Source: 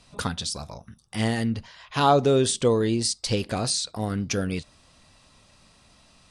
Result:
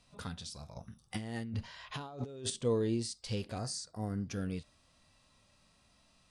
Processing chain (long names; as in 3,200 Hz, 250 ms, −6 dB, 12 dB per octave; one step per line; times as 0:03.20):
harmonic and percussive parts rebalanced percussive −10 dB
0:00.76–0:02.50: compressor whose output falls as the input rises −33 dBFS, ratio −1
0:03.58–0:04.27: gain on a spectral selection 2,100–4,400 Hz −13 dB
level −8 dB